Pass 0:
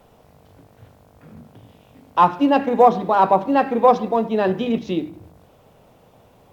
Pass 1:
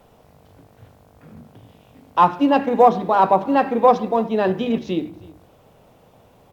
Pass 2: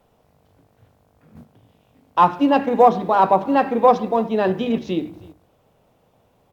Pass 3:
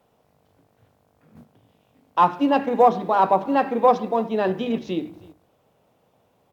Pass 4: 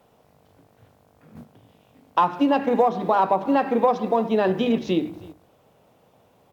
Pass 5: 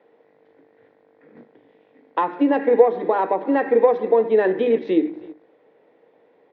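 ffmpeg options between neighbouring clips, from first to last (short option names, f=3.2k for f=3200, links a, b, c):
-af "aecho=1:1:318:0.0708"
-af "agate=range=-8dB:threshold=-41dB:ratio=16:detection=peak"
-af "highpass=f=120:p=1,volume=-2.5dB"
-af "acompressor=threshold=-21dB:ratio=5,volume=5dB"
-af "highpass=300,equalizer=f=310:t=q:w=4:g=9,equalizer=f=460:t=q:w=4:g=10,equalizer=f=680:t=q:w=4:g=-3,equalizer=f=1.2k:t=q:w=4:g=-6,equalizer=f=1.9k:t=q:w=4:g=10,equalizer=f=2.9k:t=q:w=4:g=-7,lowpass=f=3.4k:w=0.5412,lowpass=f=3.4k:w=1.3066,volume=-1dB"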